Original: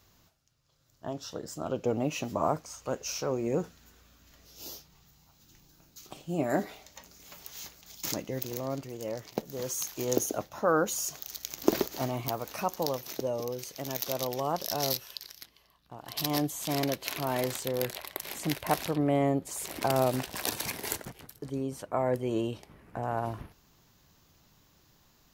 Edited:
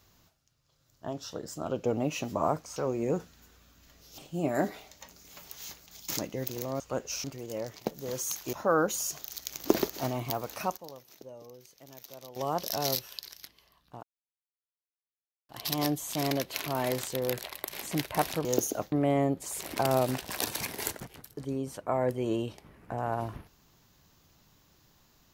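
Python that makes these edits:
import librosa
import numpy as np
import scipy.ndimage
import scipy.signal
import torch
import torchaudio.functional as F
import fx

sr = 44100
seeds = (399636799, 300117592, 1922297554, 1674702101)

y = fx.edit(x, sr, fx.move(start_s=2.76, length_s=0.44, to_s=8.75),
    fx.cut(start_s=4.62, length_s=1.51),
    fx.move(start_s=10.04, length_s=0.47, to_s=18.97),
    fx.fade_down_up(start_s=12.48, length_s=2.13, db=-15.0, fade_s=0.27, curve='log'),
    fx.insert_silence(at_s=16.01, length_s=1.46), tone=tone)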